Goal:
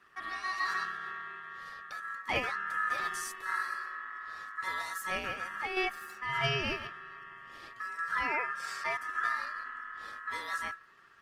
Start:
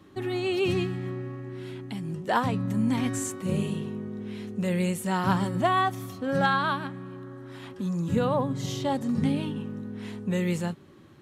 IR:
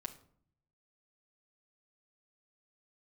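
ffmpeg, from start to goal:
-filter_complex "[0:a]bandreject=f=60:t=h:w=6,bandreject=f=120:t=h:w=6,bandreject=f=180:t=h:w=6,bandreject=f=240:t=h:w=6,bandreject=f=300:t=h:w=6,bandreject=f=360:t=h:w=6,asettb=1/sr,asplit=3[s0][s1][s2];[s0]atrim=end=5.174[s3];[s1]atrim=start=5.17:end=5.77,asetpts=PTS-STARTPTS,afade=t=in:d=0.004:c=qsin,afade=t=out:st=0.596:d=0.004:c=qsin,acompressor=threshold=0.0447:ratio=5[s4];[s2]atrim=start=5.766[s5];[s3][s4]acrossfade=d=0.004:c1=hsin:c2=qsin[s6];[s6][s5]acrossfade=d=0.004:c1=qsin:c2=hsin,aeval=exprs='val(0)*sin(2*PI*1500*n/s)':c=same,volume=0.631" -ar 48000 -c:a libopus -b:a 20k

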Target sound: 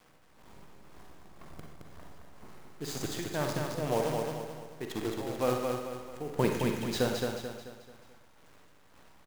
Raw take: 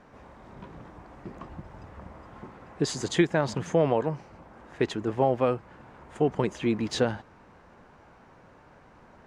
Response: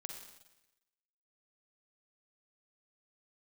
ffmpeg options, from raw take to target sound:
-filter_complex "[0:a]asettb=1/sr,asplit=3[s0][s1][s2];[s0]atrim=end=6.134[s3];[s1]atrim=start=6.13:end=6.83,asetpts=PTS-STARTPTS,afade=t=in:d=0.004:c=qsin,afade=t=out:st=0.696:d=0.004:c=qsin,acontrast=39[s4];[s2]atrim=start=6.826[s5];[s3][s4]acrossfade=d=0.004:c1=hsin:c2=qsin[s6];[s6][s5]acrossfade=d=0.004:c1=qsin:c2=hsin,acrusher=bits=6:dc=4:mix=0:aa=0.000001,tremolo=f=2:d=0.86,aecho=1:1:218|436|654|872|1090:0.631|0.271|0.117|0.0502|0.0216[s7];[1:a]atrim=start_sample=2205,afade=t=out:st=0.21:d=0.01,atrim=end_sample=9702[s8];[s7][s8]afir=irnorm=-1:irlink=0"

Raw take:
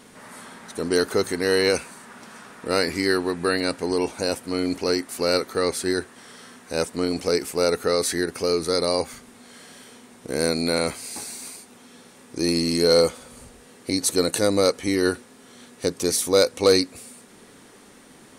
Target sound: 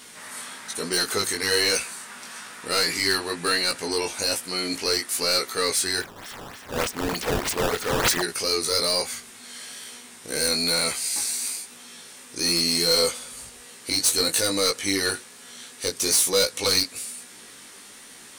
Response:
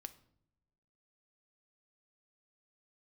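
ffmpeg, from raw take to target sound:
-filter_complex "[0:a]tiltshelf=f=1200:g=-8,asoftclip=type=tanh:threshold=0.141,flanger=delay=16.5:depth=4:speed=1.1,asplit=3[s0][s1][s2];[s0]afade=t=out:st=5.99:d=0.02[s3];[s1]acrusher=samples=12:mix=1:aa=0.000001:lfo=1:lforange=19.2:lforate=3.3,afade=t=in:st=5.99:d=0.02,afade=t=out:st=8.21:d=0.02[s4];[s2]afade=t=in:st=8.21:d=0.02[s5];[s3][s4][s5]amix=inputs=3:normalize=0,volume=1.78"

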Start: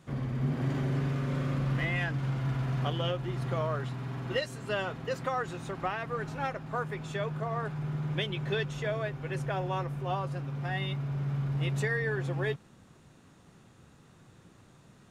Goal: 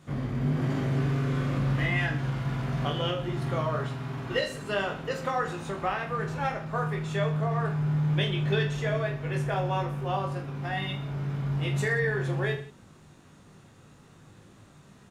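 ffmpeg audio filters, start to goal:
-af "aecho=1:1:20|46|79.8|123.7|180.9:0.631|0.398|0.251|0.158|0.1,volume=1.19"

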